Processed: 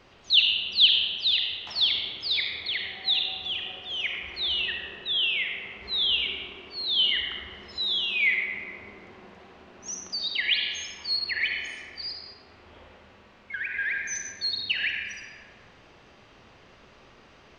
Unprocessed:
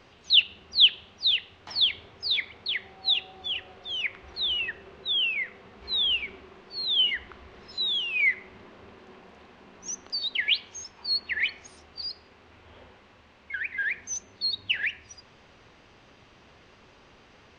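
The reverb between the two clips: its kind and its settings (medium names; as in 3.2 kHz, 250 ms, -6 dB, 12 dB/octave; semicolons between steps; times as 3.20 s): algorithmic reverb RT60 1.7 s, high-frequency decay 0.6×, pre-delay 20 ms, DRR 1 dB; trim -1 dB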